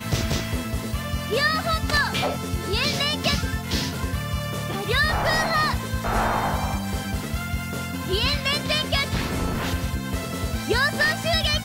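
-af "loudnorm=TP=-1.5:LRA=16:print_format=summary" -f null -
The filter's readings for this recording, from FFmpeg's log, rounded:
Input Integrated:    -23.8 LUFS
Input True Peak:      -9.1 dBTP
Input LRA:             1.1 LU
Input Threshold:     -33.8 LUFS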